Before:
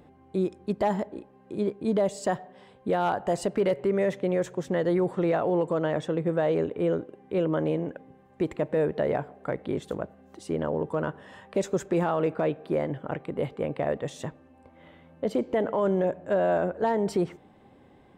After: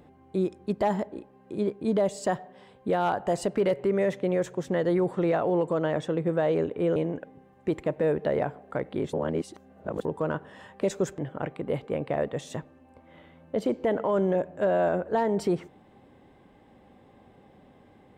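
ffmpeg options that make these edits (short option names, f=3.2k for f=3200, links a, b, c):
-filter_complex "[0:a]asplit=5[a][b][c][d][e];[a]atrim=end=6.962[f];[b]atrim=start=7.688:end=9.862[g];[c]atrim=start=9.858:end=10.782,asetpts=PTS-STARTPTS,areverse[h];[d]atrim=start=10.778:end=11.912[i];[e]atrim=start=12.868[j];[f][g]acrossfade=d=0.004:c1=hsin:c2=hsin[k];[k][h]acrossfade=d=0.004:c1=hsin:c2=hsin[l];[l][i]acrossfade=d=0.004:c1=hsin:c2=hsin[m];[m][j]acrossfade=d=0.004:c1=hsin:c2=hsin"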